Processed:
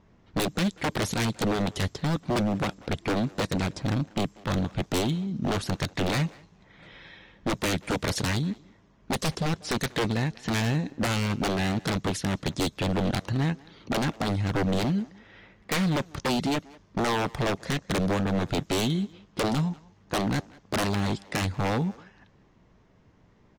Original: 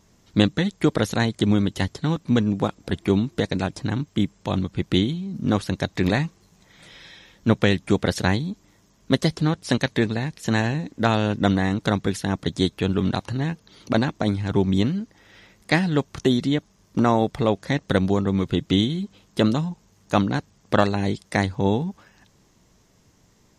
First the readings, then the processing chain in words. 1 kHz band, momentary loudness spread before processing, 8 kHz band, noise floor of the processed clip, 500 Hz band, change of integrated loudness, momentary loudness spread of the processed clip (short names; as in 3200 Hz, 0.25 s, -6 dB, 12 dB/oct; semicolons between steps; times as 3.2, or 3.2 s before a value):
-3.0 dB, 7 LU, +3.5 dB, -60 dBFS, -6.0 dB, -5.0 dB, 6 LU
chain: low-pass opened by the level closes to 2300 Hz, open at -18.5 dBFS; wavefolder -20 dBFS; speakerphone echo 0.19 s, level -18 dB